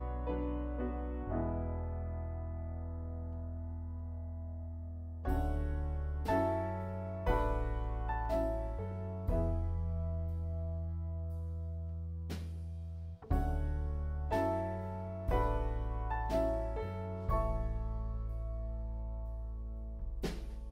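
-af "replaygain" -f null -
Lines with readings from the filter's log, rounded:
track_gain = +19.6 dB
track_peak = 0.084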